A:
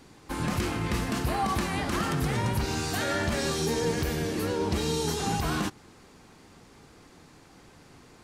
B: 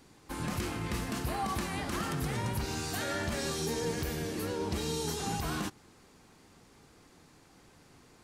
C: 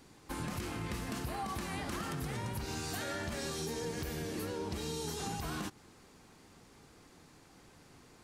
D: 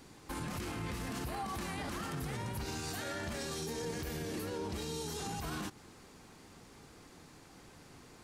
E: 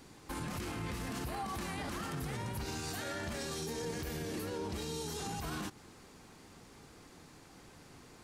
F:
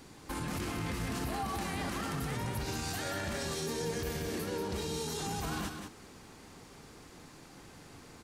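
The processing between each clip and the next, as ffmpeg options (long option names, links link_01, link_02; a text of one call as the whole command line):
ffmpeg -i in.wav -af "highshelf=frequency=7400:gain=5,volume=-6dB" out.wav
ffmpeg -i in.wav -af "acompressor=threshold=-35dB:ratio=6" out.wav
ffmpeg -i in.wav -af "alimiter=level_in=10dB:limit=-24dB:level=0:latency=1:release=34,volume=-10dB,volume=3dB" out.wav
ffmpeg -i in.wav -af anull out.wav
ffmpeg -i in.wav -af "aecho=1:1:185:0.473,volume=2.5dB" out.wav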